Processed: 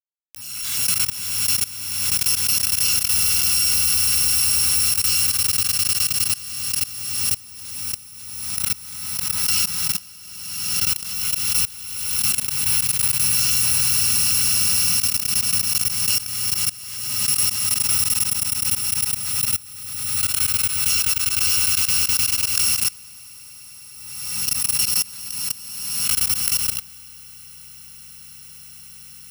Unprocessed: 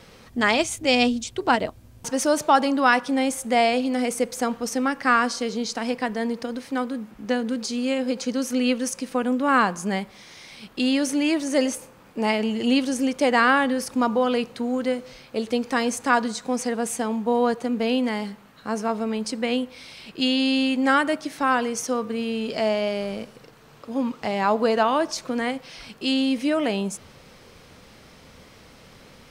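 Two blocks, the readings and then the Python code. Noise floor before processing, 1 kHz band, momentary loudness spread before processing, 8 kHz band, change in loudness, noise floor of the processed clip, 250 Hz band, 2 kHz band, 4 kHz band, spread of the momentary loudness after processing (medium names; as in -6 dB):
-50 dBFS, -16.0 dB, 11 LU, +16.5 dB, +5.5 dB, -42 dBFS, -20.0 dB, -4.0 dB, +8.5 dB, 11 LU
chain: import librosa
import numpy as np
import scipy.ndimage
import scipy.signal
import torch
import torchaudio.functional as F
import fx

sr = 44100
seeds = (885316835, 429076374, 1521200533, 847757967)

y = fx.bit_reversed(x, sr, seeds[0], block=128)
y = scipy.signal.sosfilt(scipy.signal.ellip(3, 1.0, 40, [220.0, 900.0], 'bandstop', fs=sr, output='sos'), y)
y = fx.quant_dither(y, sr, seeds[1], bits=6, dither='none')
y = fx.high_shelf(y, sr, hz=7900.0, db=-7.5)
y = fx.hum_notches(y, sr, base_hz=60, count=2)
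y = np.clip(10.0 ** (19.0 / 20.0) * y, -1.0, 1.0) / 10.0 ** (19.0 / 20.0)
y = scipy.signal.sosfilt(scipy.signal.butter(2, 41.0, 'highpass', fs=sr, output='sos'), y)
y = fx.echo_swell(y, sr, ms=102, loudest=8, wet_db=-7.0)
y = fx.level_steps(y, sr, step_db=23)
y = fx.high_shelf(y, sr, hz=2500.0, db=10.5)
y = fx.pre_swell(y, sr, db_per_s=36.0)
y = F.gain(torch.from_numpy(y), -4.5).numpy()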